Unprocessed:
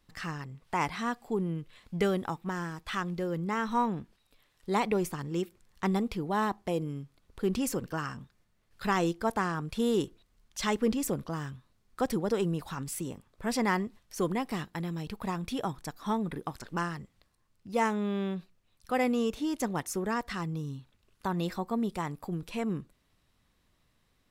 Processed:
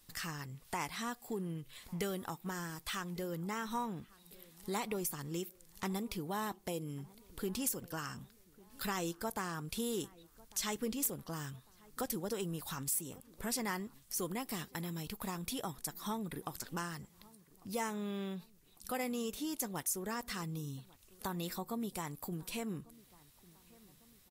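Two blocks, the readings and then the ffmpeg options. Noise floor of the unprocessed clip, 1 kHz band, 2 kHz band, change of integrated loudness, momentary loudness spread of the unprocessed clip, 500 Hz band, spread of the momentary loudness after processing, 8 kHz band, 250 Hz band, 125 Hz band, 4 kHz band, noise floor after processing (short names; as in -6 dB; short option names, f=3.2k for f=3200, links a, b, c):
-72 dBFS, -9.0 dB, -7.5 dB, -7.0 dB, 10 LU, -9.5 dB, 11 LU, +2.5 dB, -9.0 dB, -8.0 dB, -2.5 dB, -64 dBFS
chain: -filter_complex "[0:a]aemphasis=mode=production:type=75fm,acompressor=threshold=-44dB:ratio=2,aeval=exprs='0.0501*(abs(mod(val(0)/0.0501+3,4)-2)-1)':c=same,asplit=2[a][b];[b]adelay=1149,lowpass=f=1.6k:p=1,volume=-22.5dB,asplit=2[c][d];[d]adelay=1149,lowpass=f=1.6k:p=1,volume=0.5,asplit=2[e][f];[f]adelay=1149,lowpass=f=1.6k:p=1,volume=0.5[g];[c][e][g]amix=inputs=3:normalize=0[h];[a][h]amix=inputs=2:normalize=0,volume=1dB" -ar 48000 -c:a libvorbis -b:a 48k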